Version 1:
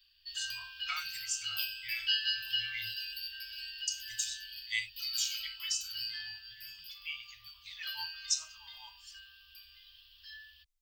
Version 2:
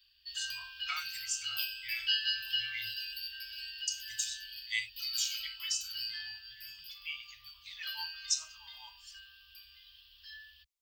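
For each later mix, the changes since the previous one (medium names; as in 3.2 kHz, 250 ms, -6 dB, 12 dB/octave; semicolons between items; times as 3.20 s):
speech: add high-pass 120 Hz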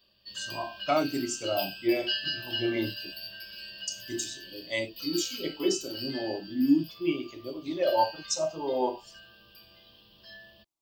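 master: remove inverse Chebyshev band-stop 200–530 Hz, stop band 70 dB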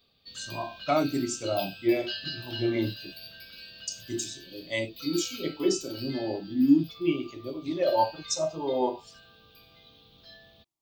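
background: remove rippled EQ curve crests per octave 1.3, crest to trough 14 dB; master: add peaking EQ 110 Hz +6 dB 2.4 oct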